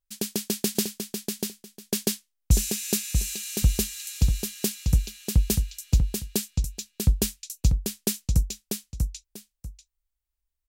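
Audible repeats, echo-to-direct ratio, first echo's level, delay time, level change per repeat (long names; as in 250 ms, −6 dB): 2, −5.0 dB, −5.0 dB, 642 ms, −13.0 dB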